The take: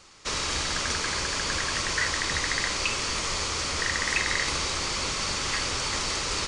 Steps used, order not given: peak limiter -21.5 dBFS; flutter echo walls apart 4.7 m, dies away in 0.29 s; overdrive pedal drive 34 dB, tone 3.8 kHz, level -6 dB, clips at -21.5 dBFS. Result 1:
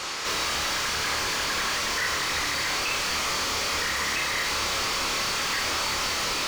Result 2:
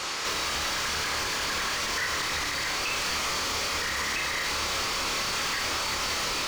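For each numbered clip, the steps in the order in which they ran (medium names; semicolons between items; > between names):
peak limiter > overdrive pedal > flutter echo; overdrive pedal > flutter echo > peak limiter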